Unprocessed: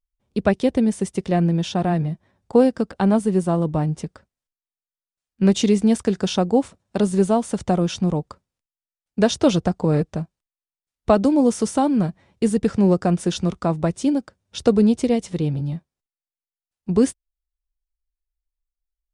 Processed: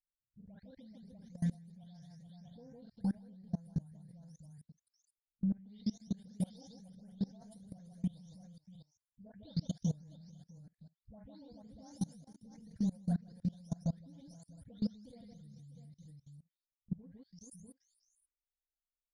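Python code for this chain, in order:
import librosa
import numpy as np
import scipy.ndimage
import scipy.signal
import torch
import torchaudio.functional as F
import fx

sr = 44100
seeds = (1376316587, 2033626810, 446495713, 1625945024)

y = fx.spec_delay(x, sr, highs='late', ms=455)
y = fx.dereverb_blind(y, sr, rt60_s=0.6)
y = fx.curve_eq(y, sr, hz=(130.0, 920.0, 8900.0), db=(0, -20, 1))
y = fx.transient(y, sr, attack_db=3, sustain_db=-11)
y = fx.fixed_phaser(y, sr, hz=1800.0, stages=8)
y = fx.echo_multitap(y, sr, ms=(42, 156, 430, 645, 693), db=(-13.5, -7.5, -16.0, -11.0, -19.5))
y = fx.level_steps(y, sr, step_db=24)
y = y * 10.0 ** (-6.0 / 20.0)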